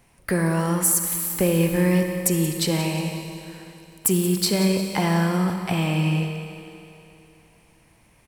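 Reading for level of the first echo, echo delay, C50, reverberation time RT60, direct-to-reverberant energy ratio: -13.5 dB, 179 ms, 5.0 dB, 2.9 s, 4.5 dB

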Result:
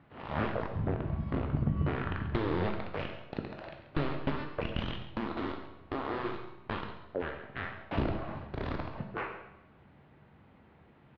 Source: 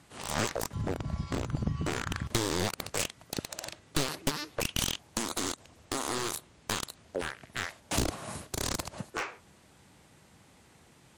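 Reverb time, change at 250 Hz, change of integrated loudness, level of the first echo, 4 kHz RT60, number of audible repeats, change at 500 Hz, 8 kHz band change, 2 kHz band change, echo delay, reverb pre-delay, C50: 0.85 s, +1.0 dB, -2.0 dB, -13.5 dB, 0.80 s, 1, +0.5 dB, under -40 dB, -3.0 dB, 136 ms, 15 ms, 6.5 dB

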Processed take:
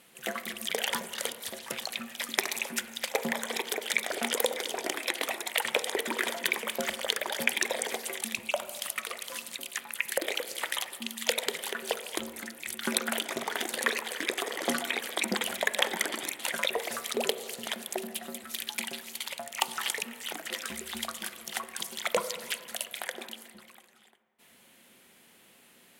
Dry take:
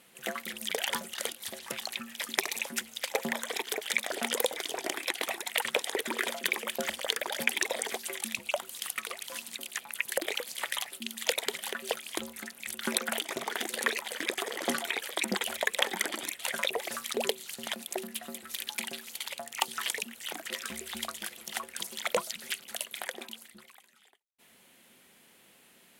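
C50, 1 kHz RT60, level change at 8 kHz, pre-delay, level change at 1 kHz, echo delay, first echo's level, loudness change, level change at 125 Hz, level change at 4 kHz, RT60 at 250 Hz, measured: 12.5 dB, 2.0 s, +1.0 dB, 14 ms, +1.5 dB, no echo, no echo, +1.0 dB, +1.5 dB, +1.0 dB, 2.0 s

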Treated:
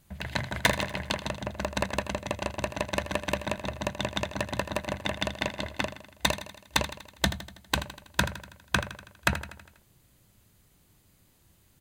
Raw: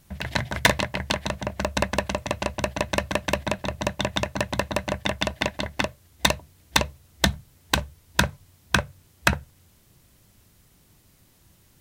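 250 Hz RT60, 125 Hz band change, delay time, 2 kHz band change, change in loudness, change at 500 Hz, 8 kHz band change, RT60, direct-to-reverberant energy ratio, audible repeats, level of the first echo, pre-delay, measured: no reverb, -4.5 dB, 81 ms, -4.5 dB, -5.0 dB, -4.5 dB, -5.5 dB, no reverb, no reverb, 5, -12.5 dB, no reverb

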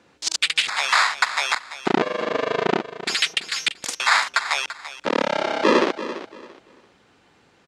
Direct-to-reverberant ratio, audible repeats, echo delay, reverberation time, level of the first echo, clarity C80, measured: no reverb, 2, 339 ms, no reverb, -13.0 dB, no reverb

